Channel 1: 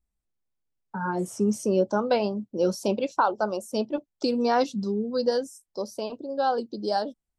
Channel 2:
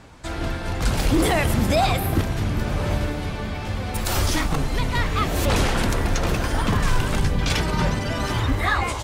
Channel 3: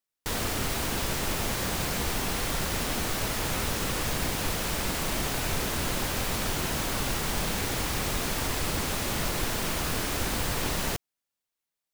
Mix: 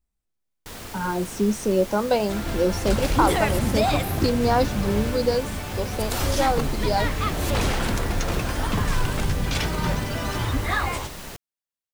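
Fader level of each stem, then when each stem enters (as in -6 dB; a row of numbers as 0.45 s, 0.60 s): +2.0 dB, -3.0 dB, -8.0 dB; 0.00 s, 2.05 s, 0.40 s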